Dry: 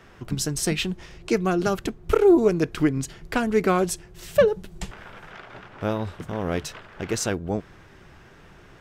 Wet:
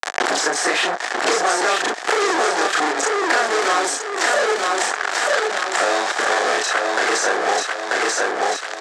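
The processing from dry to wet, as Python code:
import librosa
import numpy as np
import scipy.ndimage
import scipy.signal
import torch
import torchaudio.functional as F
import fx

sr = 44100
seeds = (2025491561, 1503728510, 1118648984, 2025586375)

p1 = fx.frame_reverse(x, sr, frame_ms=79.0)
p2 = fx.tilt_shelf(p1, sr, db=-3.0, hz=840.0)
p3 = fx.level_steps(p2, sr, step_db=11)
p4 = p2 + (p3 * librosa.db_to_amplitude(2.5))
p5 = fx.fuzz(p4, sr, gain_db=41.0, gate_db=-39.0)
p6 = fx.cabinet(p5, sr, low_hz=390.0, low_slope=24, high_hz=8100.0, hz=(740.0, 1200.0, 1700.0, 2700.0, 7500.0), db=(9, 4, 8, -4, 3))
p7 = p6 + fx.echo_feedback(p6, sr, ms=938, feedback_pct=31, wet_db=-5, dry=0)
p8 = fx.band_squash(p7, sr, depth_pct=100)
y = p8 * librosa.db_to_amplitude(-5.0)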